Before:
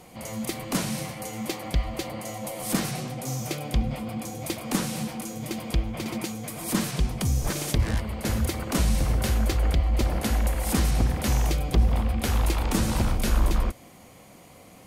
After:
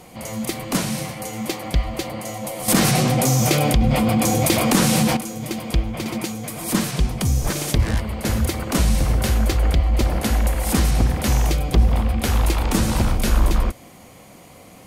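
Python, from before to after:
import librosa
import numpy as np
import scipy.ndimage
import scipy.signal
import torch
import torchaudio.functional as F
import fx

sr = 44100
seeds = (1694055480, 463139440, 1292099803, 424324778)

y = fx.env_flatten(x, sr, amount_pct=70, at=(2.68, 5.17))
y = y * 10.0 ** (5.0 / 20.0)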